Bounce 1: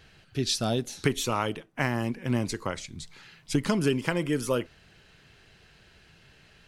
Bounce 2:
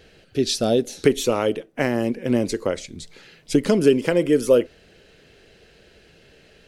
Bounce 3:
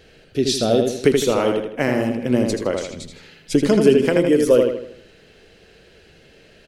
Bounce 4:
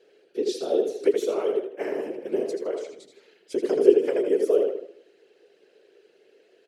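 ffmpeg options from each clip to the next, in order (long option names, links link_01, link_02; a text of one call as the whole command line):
ffmpeg -i in.wav -af "equalizer=frequency=125:width_type=o:width=1:gain=-5,equalizer=frequency=250:width_type=o:width=1:gain=3,equalizer=frequency=500:width_type=o:width=1:gain=11,equalizer=frequency=1000:width_type=o:width=1:gain=-7,volume=3.5dB" out.wav
ffmpeg -i in.wav -filter_complex "[0:a]asplit=2[link_01][link_02];[link_02]adelay=80,lowpass=frequency=4900:poles=1,volume=-4dB,asplit=2[link_03][link_04];[link_04]adelay=80,lowpass=frequency=4900:poles=1,volume=0.44,asplit=2[link_05][link_06];[link_06]adelay=80,lowpass=frequency=4900:poles=1,volume=0.44,asplit=2[link_07][link_08];[link_08]adelay=80,lowpass=frequency=4900:poles=1,volume=0.44,asplit=2[link_09][link_10];[link_10]adelay=80,lowpass=frequency=4900:poles=1,volume=0.44,asplit=2[link_11][link_12];[link_12]adelay=80,lowpass=frequency=4900:poles=1,volume=0.44[link_13];[link_01][link_03][link_05][link_07][link_09][link_11][link_13]amix=inputs=7:normalize=0,volume=1dB" out.wav
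ffmpeg -i in.wav -af "afftfilt=real='hypot(re,im)*cos(2*PI*random(0))':imag='hypot(re,im)*sin(2*PI*random(1))':win_size=512:overlap=0.75,highpass=frequency=400:width_type=q:width=4.9,volume=-9dB" out.wav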